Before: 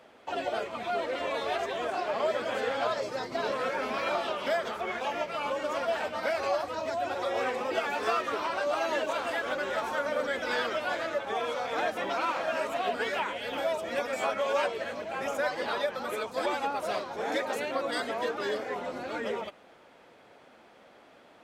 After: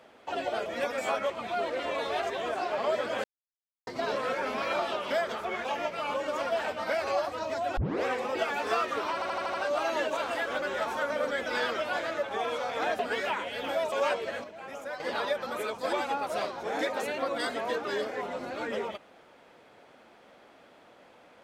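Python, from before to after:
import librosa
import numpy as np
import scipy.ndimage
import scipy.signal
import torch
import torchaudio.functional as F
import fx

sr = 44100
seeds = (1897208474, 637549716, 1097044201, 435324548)

y = fx.edit(x, sr, fx.silence(start_s=2.6, length_s=0.63),
    fx.tape_start(start_s=7.13, length_s=0.28),
    fx.stutter(start_s=8.5, slice_s=0.08, count=6),
    fx.cut(start_s=11.95, length_s=0.93),
    fx.move(start_s=13.81, length_s=0.64, to_s=0.66),
    fx.clip_gain(start_s=14.97, length_s=0.56, db=-8.5), tone=tone)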